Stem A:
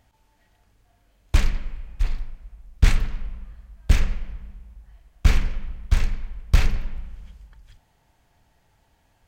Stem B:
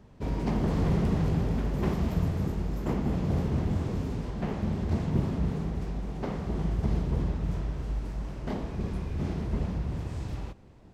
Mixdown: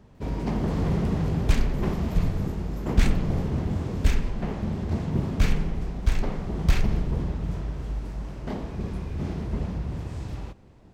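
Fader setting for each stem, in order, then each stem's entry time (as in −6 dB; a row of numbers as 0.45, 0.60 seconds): −4.0, +1.0 decibels; 0.15, 0.00 seconds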